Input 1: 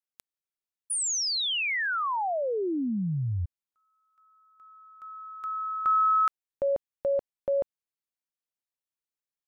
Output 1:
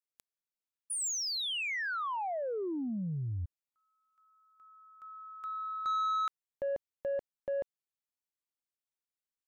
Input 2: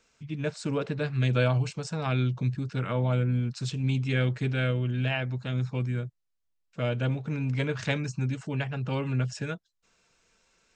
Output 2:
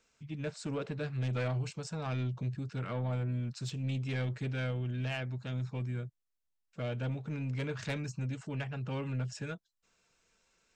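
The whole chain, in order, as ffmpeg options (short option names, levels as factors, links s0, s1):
-af "equalizer=f=7500:w=7.4:g=2.5,asoftclip=type=tanh:threshold=0.075,volume=0.531"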